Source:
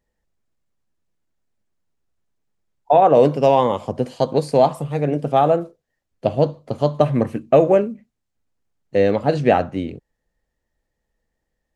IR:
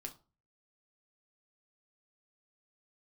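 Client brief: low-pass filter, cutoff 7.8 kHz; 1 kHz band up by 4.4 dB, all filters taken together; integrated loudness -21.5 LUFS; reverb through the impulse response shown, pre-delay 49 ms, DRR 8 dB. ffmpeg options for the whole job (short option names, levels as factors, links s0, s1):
-filter_complex "[0:a]lowpass=7800,equalizer=f=1000:t=o:g=6.5,asplit=2[s0][s1];[1:a]atrim=start_sample=2205,adelay=49[s2];[s1][s2]afir=irnorm=-1:irlink=0,volume=0.596[s3];[s0][s3]amix=inputs=2:normalize=0,volume=0.501"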